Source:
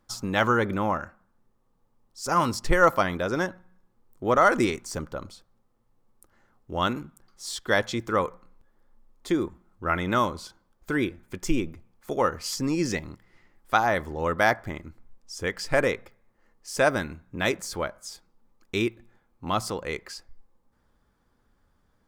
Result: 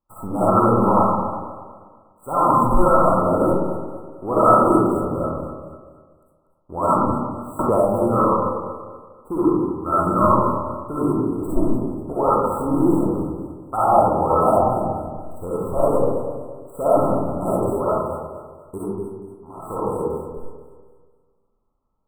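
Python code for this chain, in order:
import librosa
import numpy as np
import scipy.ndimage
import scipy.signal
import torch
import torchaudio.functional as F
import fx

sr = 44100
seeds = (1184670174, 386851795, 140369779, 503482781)

y = scipy.signal.medfilt(x, 9)
y = fx.level_steps(y, sr, step_db=22, at=(18.77, 19.64), fade=0.02)
y = fx.leveller(y, sr, passes=3)
y = fx.brickwall_bandstop(y, sr, low_hz=1400.0, high_hz=7600.0)
y = fx.peak_eq(y, sr, hz=950.0, db=6.5, octaves=0.42)
y = fx.echo_thinned(y, sr, ms=241, feedback_pct=40, hz=330.0, wet_db=-12)
y = fx.rev_freeverb(y, sr, rt60_s=1.4, hf_ratio=0.3, predelay_ms=20, drr_db=-9.5)
y = fx.band_squash(y, sr, depth_pct=100, at=(7.59, 8.24))
y = F.gain(torch.from_numpy(y), -11.5).numpy()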